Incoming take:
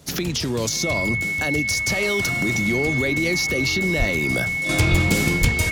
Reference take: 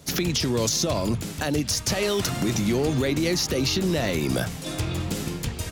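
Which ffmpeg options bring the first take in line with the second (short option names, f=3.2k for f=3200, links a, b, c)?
-filter_complex "[0:a]bandreject=f=2.2k:w=30,asplit=3[a][b][c];[a]afade=t=out:st=3.98:d=0.02[d];[b]highpass=f=140:w=0.5412,highpass=f=140:w=1.3066,afade=t=in:st=3.98:d=0.02,afade=t=out:st=4.1:d=0.02[e];[c]afade=t=in:st=4.1:d=0.02[f];[d][e][f]amix=inputs=3:normalize=0,asplit=3[g][h][i];[g]afade=t=out:st=4.9:d=0.02[j];[h]highpass=f=140:w=0.5412,highpass=f=140:w=1.3066,afade=t=in:st=4.9:d=0.02,afade=t=out:st=5.02:d=0.02[k];[i]afade=t=in:st=5.02:d=0.02[l];[j][k][l]amix=inputs=3:normalize=0,asplit=3[m][n][o];[m]afade=t=out:st=5.4:d=0.02[p];[n]highpass=f=140:w=0.5412,highpass=f=140:w=1.3066,afade=t=in:st=5.4:d=0.02,afade=t=out:st=5.52:d=0.02[q];[o]afade=t=in:st=5.52:d=0.02[r];[p][q][r]amix=inputs=3:normalize=0,asetnsamples=n=441:p=0,asendcmd='4.69 volume volume -8.5dB',volume=0dB"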